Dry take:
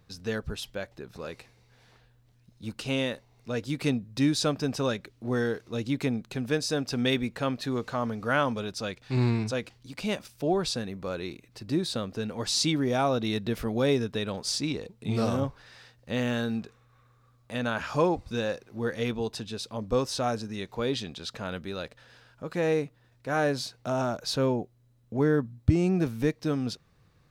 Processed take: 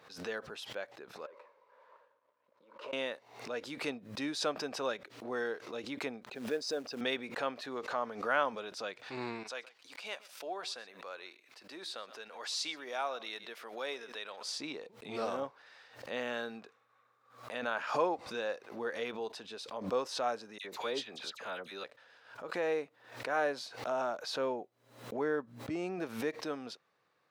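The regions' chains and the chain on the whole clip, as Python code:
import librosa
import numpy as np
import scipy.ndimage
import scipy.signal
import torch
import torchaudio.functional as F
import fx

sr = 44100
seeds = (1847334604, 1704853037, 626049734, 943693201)

y = fx.chain(x, sr, fx.over_compress(threshold_db=-45.0, ratio=-1.0),
    fx.double_bandpass(hz=750.0, octaves=0.81),
    fx.leveller(passes=2), at=(1.26, 2.93))
y = fx.chain(y, sr, fx.envelope_sharpen(power=1.5),
    fx.highpass(hz=110.0, slope=12),
    fx.quant_companded(bits=6), at=(6.27, 7.01))
y = fx.chain(y, sr, fx.highpass(hz=1200.0, slope=6),
    fx.echo_single(ms=123, db=-21.0), at=(9.43, 14.44))
y = fx.chain(y, sr, fx.high_shelf(hz=4700.0, db=7.5),
    fx.dispersion(late='lows', ms=65.0, hz=1900.0), at=(20.58, 21.84))
y = scipy.signal.sosfilt(scipy.signal.butter(2, 530.0, 'highpass', fs=sr, output='sos'), y)
y = fx.high_shelf(y, sr, hz=4200.0, db=-12.0)
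y = fx.pre_swell(y, sr, db_per_s=100.0)
y = y * librosa.db_to_amplitude(-2.5)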